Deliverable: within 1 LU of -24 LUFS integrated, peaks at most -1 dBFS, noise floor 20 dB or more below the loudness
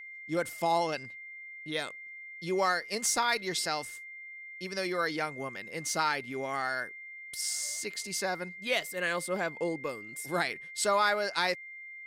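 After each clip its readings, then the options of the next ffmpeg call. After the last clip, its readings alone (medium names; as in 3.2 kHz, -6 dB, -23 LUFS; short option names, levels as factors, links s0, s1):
steady tone 2.1 kHz; tone level -43 dBFS; loudness -31.5 LUFS; peak level -14.0 dBFS; loudness target -24.0 LUFS
-> -af "bandreject=f=2100:w=30"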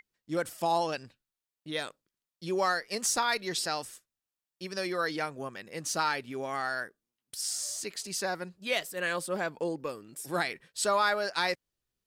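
steady tone not found; loudness -32.0 LUFS; peak level -14.0 dBFS; loudness target -24.0 LUFS
-> -af "volume=2.51"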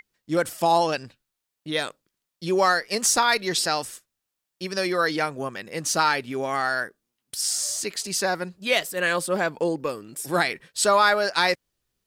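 loudness -24.0 LUFS; peak level -6.0 dBFS; noise floor -83 dBFS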